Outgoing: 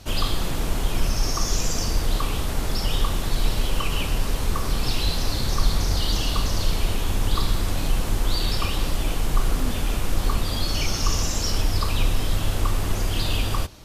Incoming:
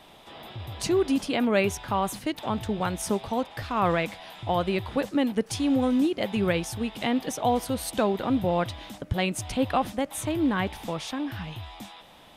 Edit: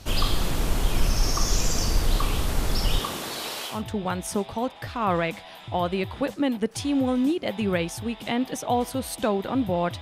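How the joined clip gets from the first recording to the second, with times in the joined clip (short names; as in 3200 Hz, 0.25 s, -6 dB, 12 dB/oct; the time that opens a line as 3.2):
outgoing
2.98–3.83 HPF 160 Hz -> 900 Hz
3.74 switch to incoming from 2.49 s, crossfade 0.18 s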